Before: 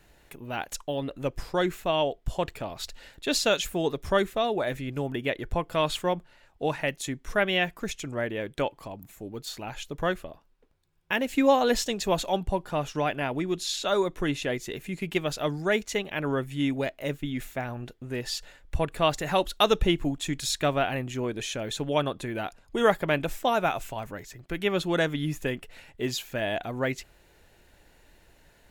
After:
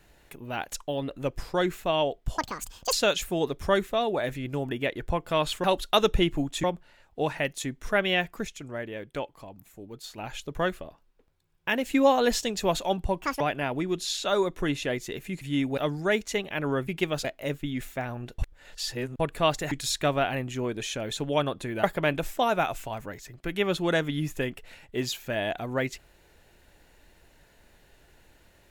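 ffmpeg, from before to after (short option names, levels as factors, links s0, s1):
-filter_complex "[0:a]asplit=17[s0][s1][s2][s3][s4][s5][s6][s7][s8][s9][s10][s11][s12][s13][s14][s15][s16];[s0]atrim=end=2.384[s17];[s1]atrim=start=2.38:end=3.36,asetpts=PTS-STARTPTS,asetrate=78939,aresample=44100,atrim=end_sample=24144,asetpts=PTS-STARTPTS[s18];[s2]atrim=start=3.356:end=6.072[s19];[s3]atrim=start=19.308:end=20.312[s20];[s4]atrim=start=6.068:end=7.882[s21];[s5]atrim=start=7.878:end=9.612,asetpts=PTS-STARTPTS,volume=0.562[s22];[s6]atrim=start=9.608:end=12.654[s23];[s7]atrim=start=12.65:end=13,asetpts=PTS-STARTPTS,asetrate=82467,aresample=44100,atrim=end_sample=8254,asetpts=PTS-STARTPTS[s24];[s8]atrim=start=12.996:end=15.012[s25];[s9]atrim=start=16.478:end=16.842[s26];[s10]atrim=start=15.378:end=16.482[s27];[s11]atrim=start=15.008:end=15.382[s28];[s12]atrim=start=16.838:end=17.982[s29];[s13]atrim=start=17.978:end=18.792,asetpts=PTS-STARTPTS,areverse[s30];[s14]atrim=start=18.788:end=19.312[s31];[s15]atrim=start=20.308:end=22.432[s32];[s16]atrim=start=22.888[s33];[s17][s18]acrossfade=d=0.004:c1=hsin:c2=hsin[s34];[s34][s19]acrossfade=d=0.004:c1=hsin:c2=hsin[s35];[s35][s20]acrossfade=d=0.004:c1=hsin:c2=hsin[s36];[s36][s21]acrossfade=d=0.004:c1=hsin:c2=hsin[s37];[s37][s22]acrossfade=d=0.004:c1=hsin:c2=hsin[s38];[s38][s23]acrossfade=d=0.004:c1=hsin:c2=hsin[s39];[s39][s24]acrossfade=d=0.004:c1=hsin:c2=hsin[s40];[s40][s25]acrossfade=d=0.004:c1=hsin:c2=hsin[s41];[s41][s26]acrossfade=d=0.004:c1=hsin:c2=hsin[s42];[s42][s27]acrossfade=d=0.004:c1=hsin:c2=hsin[s43];[s43][s28]acrossfade=d=0.004:c1=hsin:c2=hsin[s44];[s44][s29]acrossfade=d=0.004:c1=hsin:c2=hsin[s45];[s45][s30]acrossfade=d=0.004:c1=hsin:c2=hsin[s46];[s46][s31]acrossfade=d=0.004:c1=hsin:c2=hsin[s47];[s47][s32]acrossfade=d=0.004:c1=hsin:c2=hsin[s48];[s48][s33]acrossfade=d=0.004:c1=hsin:c2=hsin"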